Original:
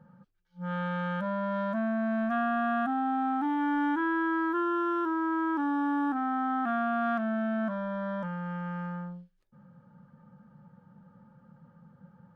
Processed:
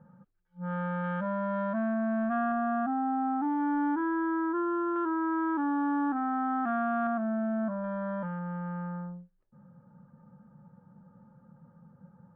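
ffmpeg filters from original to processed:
ffmpeg -i in.wav -af "asetnsamples=nb_out_samples=441:pad=0,asendcmd='1.04 lowpass f 2000;1.94 lowpass f 1600;2.52 lowpass f 1200;4.96 lowpass f 1800;7.07 lowpass f 1100;7.84 lowpass f 1700;8.39 lowpass f 1300',lowpass=1600" out.wav

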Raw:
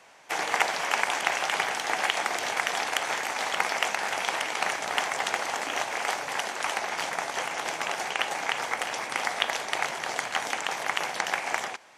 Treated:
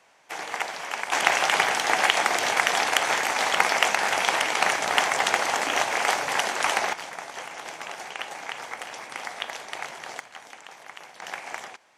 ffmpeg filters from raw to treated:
ffmpeg -i in.wav -af "asetnsamples=nb_out_samples=441:pad=0,asendcmd='1.12 volume volume 5.5dB;6.93 volume volume -6dB;10.2 volume volume -14.5dB;11.22 volume volume -6.5dB',volume=-5dB" out.wav

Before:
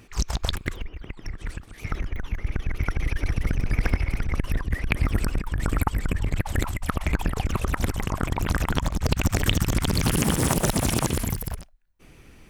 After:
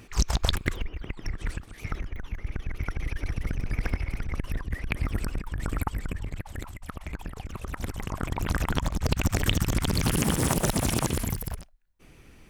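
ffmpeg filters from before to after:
ffmpeg -i in.wav -af "volume=11dB,afade=type=out:start_time=1.46:duration=0.6:silence=0.446684,afade=type=out:start_time=5.92:duration=0.57:silence=0.473151,afade=type=in:start_time=7.53:duration=1.08:silence=0.334965" out.wav

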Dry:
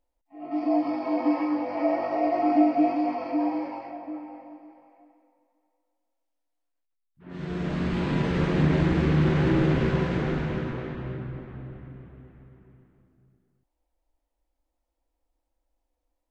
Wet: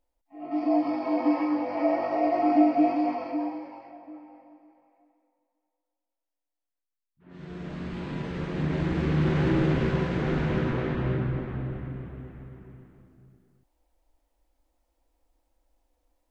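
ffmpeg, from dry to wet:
ffmpeg -i in.wav -af "volume=15dB,afade=type=out:start_time=3.09:duration=0.51:silence=0.398107,afade=type=in:start_time=8.48:duration=0.92:silence=0.473151,afade=type=in:start_time=10.16:duration=0.96:silence=0.375837" out.wav

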